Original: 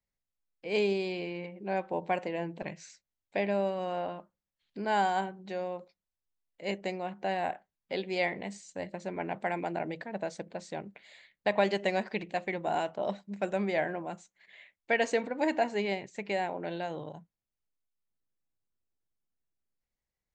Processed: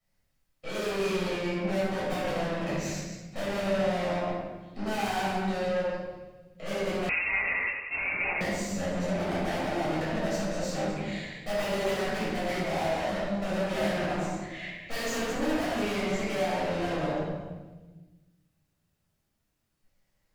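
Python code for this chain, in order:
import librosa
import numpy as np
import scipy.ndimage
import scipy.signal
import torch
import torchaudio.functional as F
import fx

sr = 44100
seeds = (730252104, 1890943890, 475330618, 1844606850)

y = fx.reverse_delay(x, sr, ms=116, wet_db=-5.5)
y = (np.mod(10.0 ** (17.0 / 20.0) * y + 1.0, 2.0) - 1.0) / 10.0 ** (17.0 / 20.0)
y = fx.tube_stage(y, sr, drive_db=45.0, bias=0.35)
y = fx.echo_thinned(y, sr, ms=157, feedback_pct=62, hz=990.0, wet_db=-23.5)
y = fx.room_shoebox(y, sr, seeds[0], volume_m3=710.0, walls='mixed', distance_m=6.4)
y = fx.freq_invert(y, sr, carrier_hz=2700, at=(7.09, 8.41))
y = y * 10.0 ** (3.0 / 20.0)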